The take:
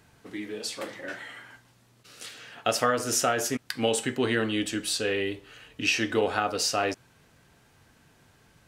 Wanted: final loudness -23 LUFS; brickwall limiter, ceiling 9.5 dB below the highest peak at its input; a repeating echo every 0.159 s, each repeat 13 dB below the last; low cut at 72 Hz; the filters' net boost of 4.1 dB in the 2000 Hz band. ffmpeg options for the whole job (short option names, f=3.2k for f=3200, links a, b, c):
-af "highpass=72,equalizer=f=2k:t=o:g=5.5,alimiter=limit=-17.5dB:level=0:latency=1,aecho=1:1:159|318|477:0.224|0.0493|0.0108,volume=6.5dB"